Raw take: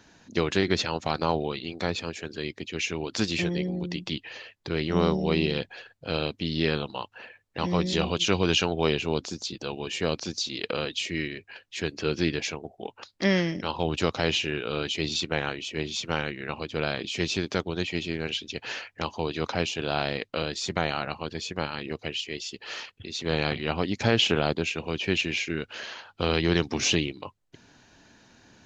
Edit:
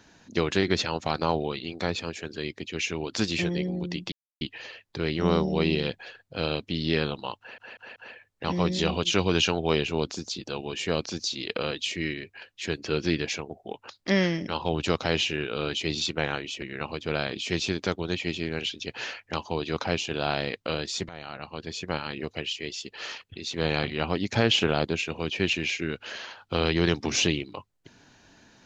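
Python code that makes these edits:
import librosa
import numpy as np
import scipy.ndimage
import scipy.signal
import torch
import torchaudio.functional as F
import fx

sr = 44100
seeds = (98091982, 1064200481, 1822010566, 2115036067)

y = fx.edit(x, sr, fx.insert_silence(at_s=4.12, length_s=0.29),
    fx.stutter(start_s=7.1, slice_s=0.19, count=4),
    fx.cut(start_s=15.76, length_s=0.54),
    fx.fade_in_from(start_s=20.77, length_s=0.77, floor_db=-19.5), tone=tone)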